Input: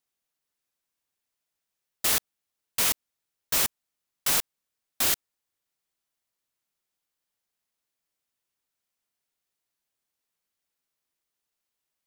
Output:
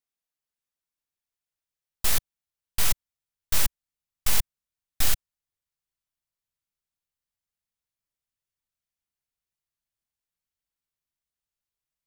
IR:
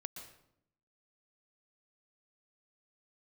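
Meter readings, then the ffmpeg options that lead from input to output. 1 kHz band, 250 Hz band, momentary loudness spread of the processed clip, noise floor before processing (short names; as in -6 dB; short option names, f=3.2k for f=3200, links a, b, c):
-3.0 dB, -2.5 dB, 7 LU, -85 dBFS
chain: -af "aeval=exprs='0.282*(cos(1*acos(clip(val(0)/0.282,-1,1)))-cos(1*PI/2))+0.0708*(cos(6*acos(clip(val(0)/0.282,-1,1)))-cos(6*PI/2))+0.0158*(cos(7*acos(clip(val(0)/0.282,-1,1)))-cos(7*PI/2))':c=same,asubboost=boost=4:cutoff=150,volume=-3.5dB"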